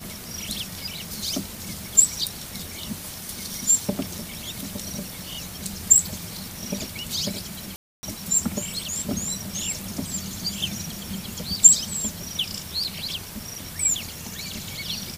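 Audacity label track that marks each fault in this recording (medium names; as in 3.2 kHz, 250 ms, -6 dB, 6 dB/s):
7.760000	8.030000	dropout 270 ms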